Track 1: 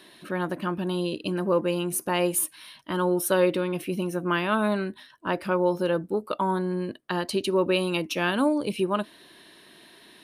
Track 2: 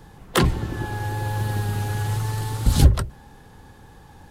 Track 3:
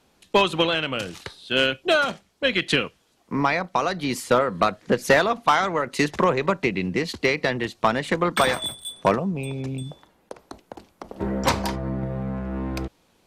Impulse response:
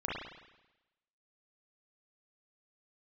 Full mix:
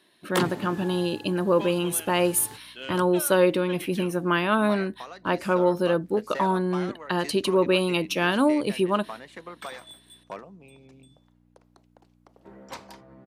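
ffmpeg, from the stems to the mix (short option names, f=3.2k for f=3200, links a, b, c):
-filter_complex "[0:a]agate=range=-13dB:threshold=-45dB:ratio=16:detection=peak,volume=2dB,asplit=2[a][b];[1:a]highpass=f=160:w=0.5412,highpass=f=160:w=1.3066,volume=2.5dB,afade=t=out:st=0.75:d=0.52:silence=0.237137,afade=t=in:st=2.08:d=0.37:silence=0.375837[c];[2:a]aeval=exprs='val(0)+0.0224*(sin(2*PI*60*n/s)+sin(2*PI*2*60*n/s)/2+sin(2*PI*3*60*n/s)/3+sin(2*PI*4*60*n/s)/4+sin(2*PI*5*60*n/s)/5)':c=same,highpass=f=320:p=1,adelay=1250,volume=-17.5dB[d];[b]apad=whole_len=189641[e];[c][e]sidechaingate=range=-33dB:threshold=-37dB:ratio=16:detection=peak[f];[a][f][d]amix=inputs=3:normalize=0"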